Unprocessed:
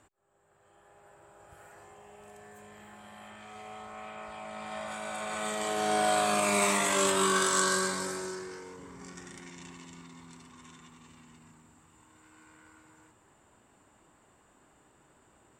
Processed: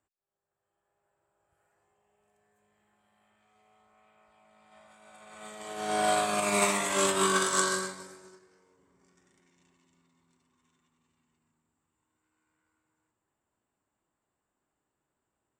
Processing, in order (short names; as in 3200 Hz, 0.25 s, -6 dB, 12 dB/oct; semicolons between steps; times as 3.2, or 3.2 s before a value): on a send: tape echo 0.345 s, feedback 83%, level -18.5 dB, low-pass 1000 Hz; on the sum: upward expander 2.5:1, over -40 dBFS; gain +2.5 dB